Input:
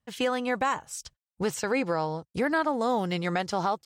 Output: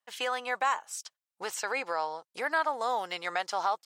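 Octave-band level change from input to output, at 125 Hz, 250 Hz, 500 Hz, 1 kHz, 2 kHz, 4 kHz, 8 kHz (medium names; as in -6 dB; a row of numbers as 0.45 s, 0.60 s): under -25 dB, -19.0 dB, -7.0 dB, -0.5 dB, -0.5 dB, -1.0 dB, -1.0 dB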